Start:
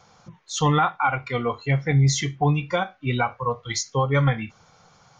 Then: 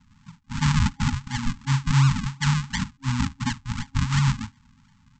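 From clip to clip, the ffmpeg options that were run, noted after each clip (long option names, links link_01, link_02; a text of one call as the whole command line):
ffmpeg -i in.wav -af "aresample=16000,acrusher=samples=24:mix=1:aa=0.000001:lfo=1:lforange=24:lforate=2.8,aresample=44100,afftfilt=real='re*(1-between(b*sr/4096,270,820))':imag='im*(1-between(b*sr/4096,270,820))':win_size=4096:overlap=0.75" out.wav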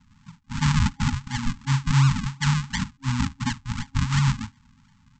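ffmpeg -i in.wav -af anull out.wav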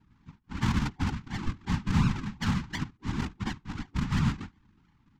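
ffmpeg -i in.wav -af "adynamicsmooth=sensitivity=1:basefreq=4000,afftfilt=real='hypot(re,im)*cos(2*PI*random(0))':imag='hypot(re,im)*sin(2*PI*random(1))':win_size=512:overlap=0.75" out.wav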